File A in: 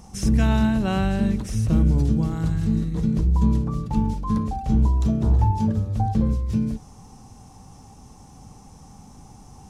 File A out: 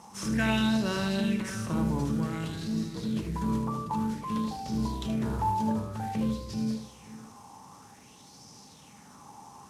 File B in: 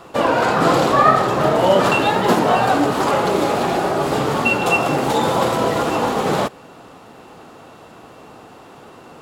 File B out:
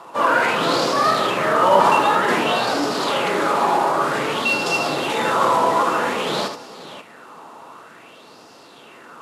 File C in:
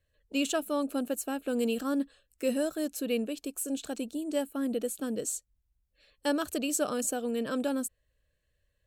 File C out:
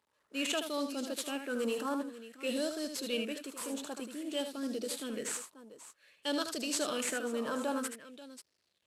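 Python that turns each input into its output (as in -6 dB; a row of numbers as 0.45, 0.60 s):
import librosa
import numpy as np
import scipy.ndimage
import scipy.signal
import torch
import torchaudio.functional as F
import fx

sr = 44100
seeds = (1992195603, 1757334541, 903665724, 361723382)

y = fx.cvsd(x, sr, bps=64000)
y = scipy.signal.sosfilt(scipy.signal.butter(2, 110.0, 'highpass', fs=sr, output='sos'), y)
y = fx.low_shelf(y, sr, hz=140.0, db=-10.5)
y = fx.notch(y, sr, hz=760.0, q=12.0)
y = fx.transient(y, sr, attack_db=-5, sustain_db=1)
y = fx.echo_multitap(y, sr, ms=(77, 537), db=(-7.5, -14.5))
y = fx.bell_lfo(y, sr, hz=0.53, low_hz=910.0, high_hz=5100.0, db=12)
y = F.gain(torch.from_numpy(y), -3.5).numpy()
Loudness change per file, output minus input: -8.0, -1.5, -4.0 LU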